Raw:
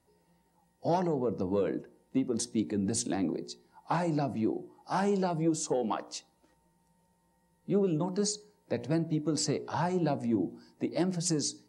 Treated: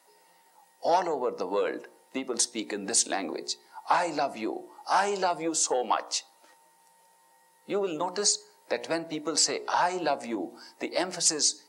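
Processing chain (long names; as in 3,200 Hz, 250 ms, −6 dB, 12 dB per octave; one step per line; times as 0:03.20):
high-pass filter 730 Hz 12 dB per octave
in parallel at +1 dB: downward compressor, threshold −45 dBFS, peak gain reduction 16 dB
on the sum: level +7.5 dB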